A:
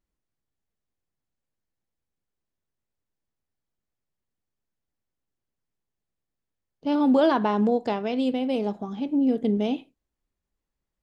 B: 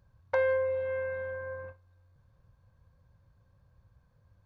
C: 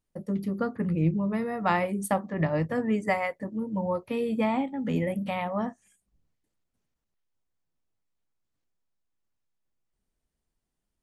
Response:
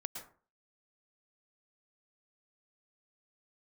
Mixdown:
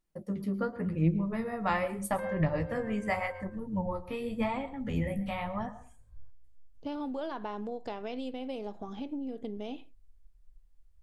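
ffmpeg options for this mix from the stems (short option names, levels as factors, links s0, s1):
-filter_complex "[0:a]acompressor=threshold=0.0355:ratio=12,volume=0.75[s0];[1:a]adelay=1850,volume=0.501[s1];[2:a]asubboost=boost=3:cutoff=180,flanger=delay=5.4:depth=9.9:regen=32:speed=0.86:shape=sinusoidal,volume=0.75,asplit=3[s2][s3][s4];[s3]volume=0.501[s5];[s4]apad=whole_len=278116[s6];[s1][s6]sidechaincompress=threshold=0.0178:ratio=8:attack=16:release=298[s7];[3:a]atrim=start_sample=2205[s8];[s5][s8]afir=irnorm=-1:irlink=0[s9];[s0][s7][s2][s9]amix=inputs=4:normalize=0,asubboost=boost=11:cutoff=52"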